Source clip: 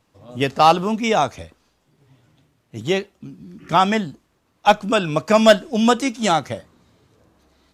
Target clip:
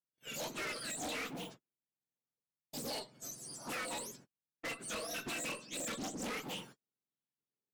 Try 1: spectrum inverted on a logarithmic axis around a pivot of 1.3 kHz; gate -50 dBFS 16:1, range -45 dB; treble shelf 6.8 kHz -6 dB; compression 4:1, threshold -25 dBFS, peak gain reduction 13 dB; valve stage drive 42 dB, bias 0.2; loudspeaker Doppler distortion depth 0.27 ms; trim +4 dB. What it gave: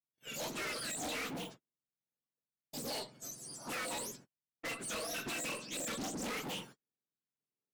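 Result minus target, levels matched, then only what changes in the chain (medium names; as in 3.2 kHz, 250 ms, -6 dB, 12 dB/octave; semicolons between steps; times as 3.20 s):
compression: peak gain reduction -6.5 dB
change: compression 4:1, threshold -33.5 dBFS, peak gain reduction 19 dB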